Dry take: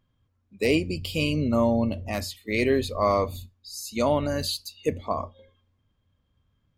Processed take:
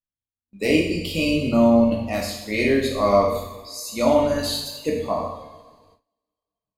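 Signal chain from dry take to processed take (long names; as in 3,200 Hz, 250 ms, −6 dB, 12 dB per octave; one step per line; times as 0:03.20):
coupled-rooms reverb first 0.9 s, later 3.1 s, from −22 dB, DRR −2 dB
noise gate with hold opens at −45 dBFS
noise reduction from a noise print of the clip's start 11 dB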